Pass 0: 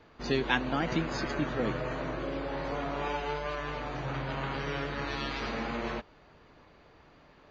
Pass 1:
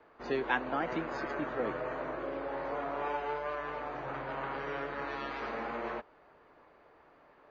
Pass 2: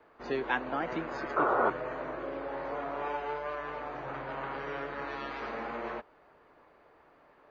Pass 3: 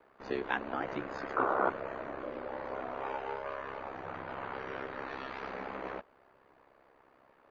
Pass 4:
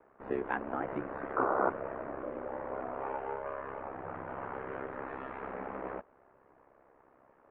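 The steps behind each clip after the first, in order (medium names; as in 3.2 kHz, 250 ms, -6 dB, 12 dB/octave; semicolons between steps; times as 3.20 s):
three-band isolator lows -14 dB, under 320 Hz, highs -15 dB, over 2.1 kHz
painted sound noise, 1.36–1.70 s, 350–1500 Hz -27 dBFS
ring modulator 33 Hz
Gaussian low-pass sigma 4.3 samples; trim +1.5 dB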